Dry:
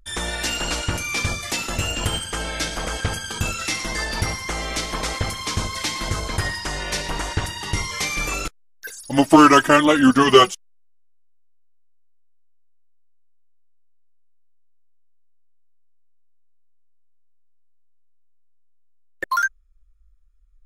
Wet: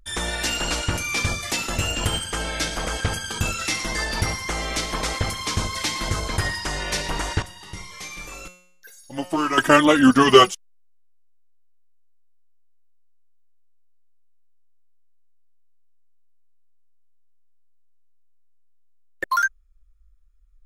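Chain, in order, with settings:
0:07.42–0:09.58: tuned comb filter 180 Hz, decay 0.65 s, harmonics all, mix 80%

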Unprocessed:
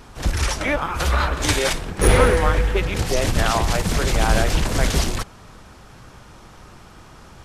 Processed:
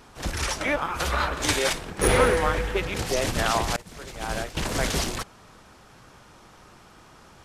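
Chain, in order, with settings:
low-shelf EQ 130 Hz −9 dB
0:03.76–0:04.57: downward expander −13 dBFS
in parallel at −12 dB: dead-zone distortion −36.5 dBFS
on the sum: level −4.5 dB

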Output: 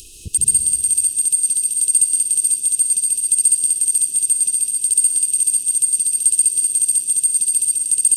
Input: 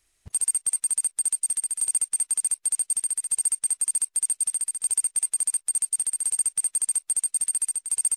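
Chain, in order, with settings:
brick-wall band-stop 490–2,500 Hz
upward compression, threshold −32 dBFS
dense smooth reverb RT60 1.9 s, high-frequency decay 0.65×, pre-delay 110 ms, DRR 1 dB
level +8 dB

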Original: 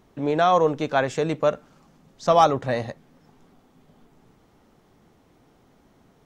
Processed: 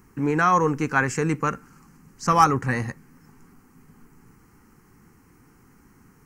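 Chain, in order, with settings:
high-shelf EQ 4,300 Hz +7 dB
phaser with its sweep stopped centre 1,500 Hz, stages 4
level +5.5 dB

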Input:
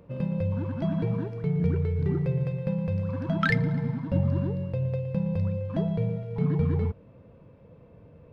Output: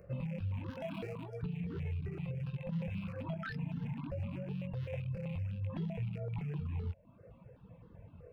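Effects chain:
loose part that buzzes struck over −28 dBFS, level −34 dBFS
chorus effect 0.66 Hz, delay 16 ms, depth 6.9 ms
downward compressor 6 to 1, threshold −32 dBFS, peak gain reduction 10 dB
0:00.70–0:01.43: bass and treble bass −9 dB, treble +8 dB
brickwall limiter −32 dBFS, peak gain reduction 8 dB
reverb reduction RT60 0.88 s
step-sequenced phaser 7.8 Hz 940–2,400 Hz
level +4.5 dB

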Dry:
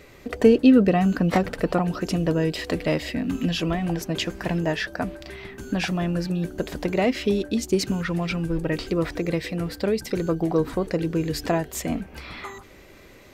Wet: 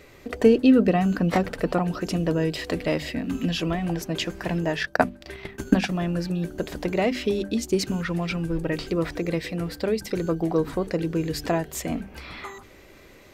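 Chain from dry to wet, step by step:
0:04.81–0:05.92: transient designer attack +12 dB, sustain −12 dB
mains-hum notches 50/100/150/200/250 Hz
level −1 dB

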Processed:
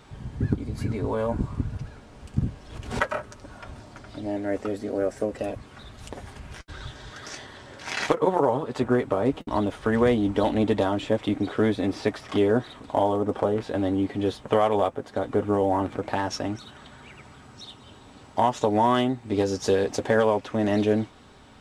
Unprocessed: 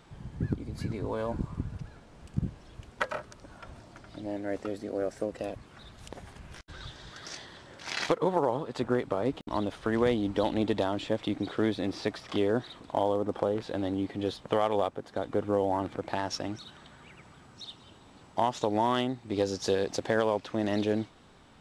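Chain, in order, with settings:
notch comb filter 170 Hz
dynamic equaliser 4,300 Hz, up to −6 dB, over −57 dBFS, Q 1.5
0:02.41–0:03.02: background raised ahead of every attack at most 93 dB per second
level +7 dB

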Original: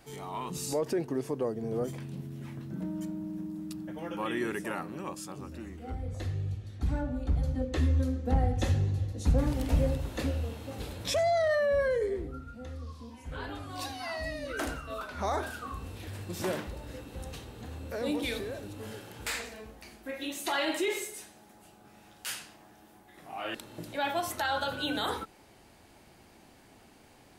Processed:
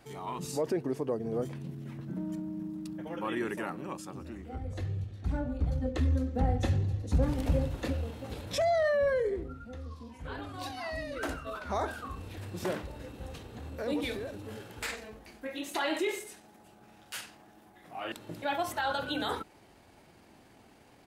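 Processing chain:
high-pass filter 41 Hz 6 dB per octave
high-shelf EQ 4,100 Hz −5 dB
tempo change 1.3×

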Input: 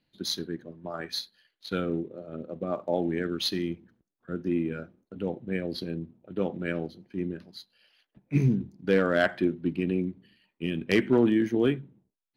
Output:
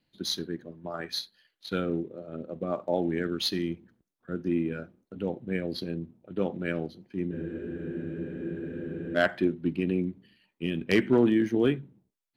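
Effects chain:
tape wow and flutter 19 cents
frozen spectrum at 0:07.33, 1.83 s

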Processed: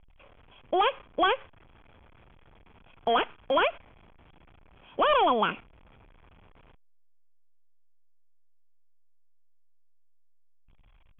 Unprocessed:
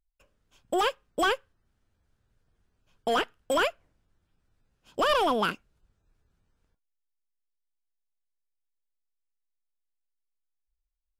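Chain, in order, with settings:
converter with a step at zero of −41 dBFS
Chebyshev low-pass with heavy ripple 3,400 Hz, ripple 6 dB
noise gate −41 dBFS, range −7 dB
level +3.5 dB

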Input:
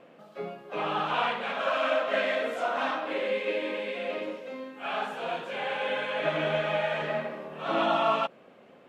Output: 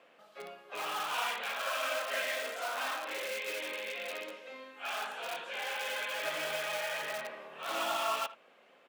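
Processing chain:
far-end echo of a speakerphone 80 ms, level −17 dB
in parallel at −9.5 dB: wrap-around overflow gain 26 dB
on the sum: high-pass filter 1,500 Hz 6 dB per octave
level −2.5 dB

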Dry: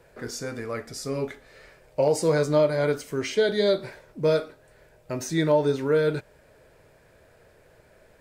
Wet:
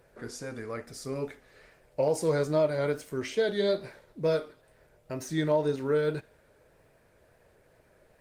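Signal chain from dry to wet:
feedback echo with a high-pass in the loop 79 ms, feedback 64%, high-pass 730 Hz, level −24 dB
tape wow and flutter 52 cents
level −4.5 dB
Opus 24 kbit/s 48,000 Hz

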